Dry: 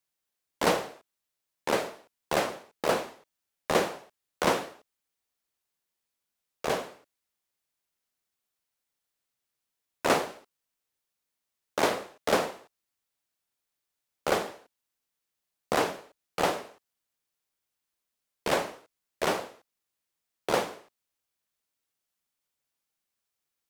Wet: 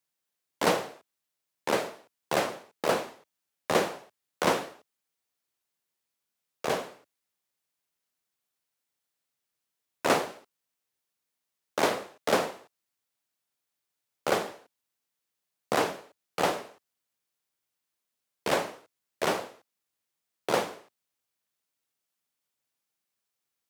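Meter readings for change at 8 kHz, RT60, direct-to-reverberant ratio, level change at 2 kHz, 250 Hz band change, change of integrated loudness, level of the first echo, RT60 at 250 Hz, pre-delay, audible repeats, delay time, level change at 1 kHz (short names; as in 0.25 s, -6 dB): 0.0 dB, none, none, 0.0 dB, 0.0 dB, 0.0 dB, none, none, none, none, none, 0.0 dB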